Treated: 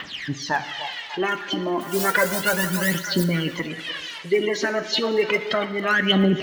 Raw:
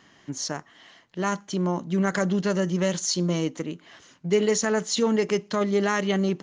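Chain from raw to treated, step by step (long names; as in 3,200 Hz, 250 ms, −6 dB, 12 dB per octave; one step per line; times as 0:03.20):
spike at every zero crossing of −26 dBFS
gate on every frequency bin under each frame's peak −30 dB strong
low-pass filter 3,100 Hz 24 dB per octave
0:01.80–0:03.24: noise that follows the level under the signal 21 dB
phase shifter 0.32 Hz, delay 3.3 ms, feedback 75%
in parallel at −1 dB: brickwall limiter −15 dBFS, peak gain reduction 11 dB
on the sum: high-shelf EQ 2,100 Hz +8 dB
on a send: echo through a band-pass that steps 297 ms, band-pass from 660 Hz, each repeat 0.7 octaves, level −7.5 dB
on the sum: harmonic and percussive parts rebalanced harmonic −8 dB
reverb whose tail is shaped and stops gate 480 ms falling, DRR 9.5 dB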